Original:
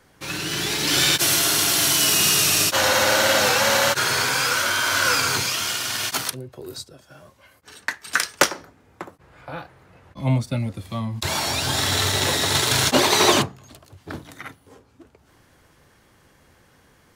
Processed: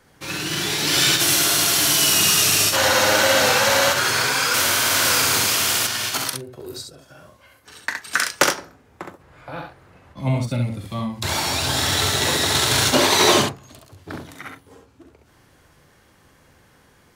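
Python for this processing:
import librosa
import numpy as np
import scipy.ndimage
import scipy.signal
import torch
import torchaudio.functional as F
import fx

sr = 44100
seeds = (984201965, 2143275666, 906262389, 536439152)

y = fx.room_early_taps(x, sr, ms=(41, 67), db=(-11.0, -5.0))
y = fx.spectral_comp(y, sr, ratio=2.0, at=(4.54, 5.87))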